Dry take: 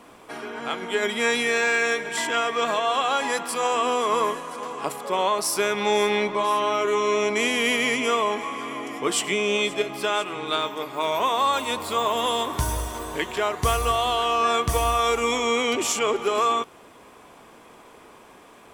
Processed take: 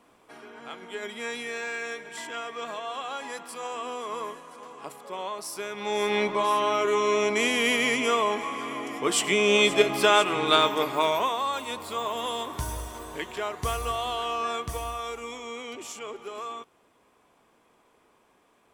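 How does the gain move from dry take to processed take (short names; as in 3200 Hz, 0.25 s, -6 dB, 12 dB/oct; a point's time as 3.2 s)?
5.71 s -11.5 dB
6.2 s -1.5 dB
9.04 s -1.5 dB
9.82 s +5 dB
10.89 s +5 dB
11.41 s -7 dB
14.3 s -7 dB
15.37 s -15 dB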